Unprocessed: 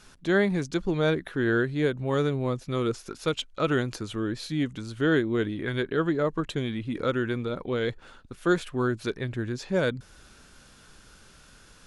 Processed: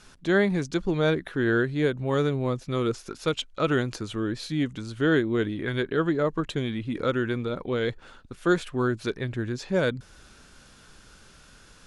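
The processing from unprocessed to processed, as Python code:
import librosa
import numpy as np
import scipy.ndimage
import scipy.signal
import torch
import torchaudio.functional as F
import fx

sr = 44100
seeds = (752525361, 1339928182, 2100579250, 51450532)

y = scipy.signal.sosfilt(scipy.signal.butter(2, 11000.0, 'lowpass', fs=sr, output='sos'), x)
y = y * 10.0 ** (1.0 / 20.0)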